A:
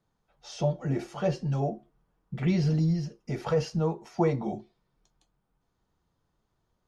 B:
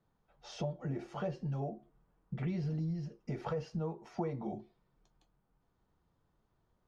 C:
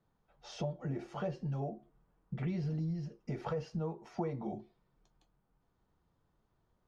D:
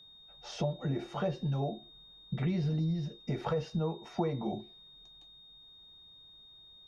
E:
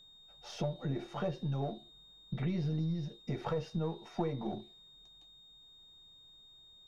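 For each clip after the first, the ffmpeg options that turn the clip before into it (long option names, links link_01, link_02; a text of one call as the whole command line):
ffmpeg -i in.wav -af "lowpass=frequency=2400:poles=1,acompressor=threshold=-37dB:ratio=3" out.wav
ffmpeg -i in.wav -af anull out.wav
ffmpeg -i in.wav -af "aeval=exprs='val(0)+0.00126*sin(2*PI*3700*n/s)':channel_layout=same,volume=4.5dB" out.wav
ffmpeg -i in.wav -af "aeval=exprs='if(lt(val(0),0),0.708*val(0),val(0))':channel_layout=same,volume=-1.5dB" out.wav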